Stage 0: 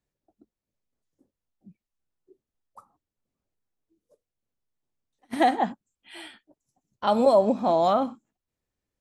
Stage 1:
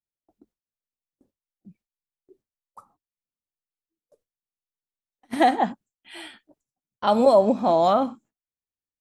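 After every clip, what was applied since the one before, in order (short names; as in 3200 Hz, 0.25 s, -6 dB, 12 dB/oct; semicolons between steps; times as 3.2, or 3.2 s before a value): gate with hold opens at -57 dBFS; gain +2.5 dB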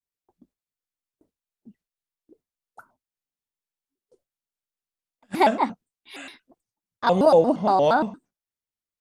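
shaped vibrato square 4.3 Hz, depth 250 cents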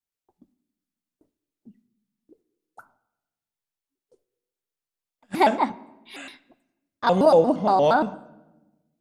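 reverb RT60 1.1 s, pre-delay 7 ms, DRR 16.5 dB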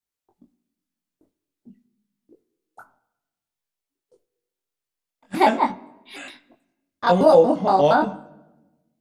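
chorus 0.49 Hz, delay 20 ms, depth 2.6 ms; gain +5 dB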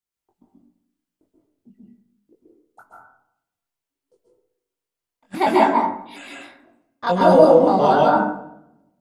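plate-style reverb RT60 0.65 s, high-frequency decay 0.4×, pre-delay 0.12 s, DRR -3.5 dB; gain -3 dB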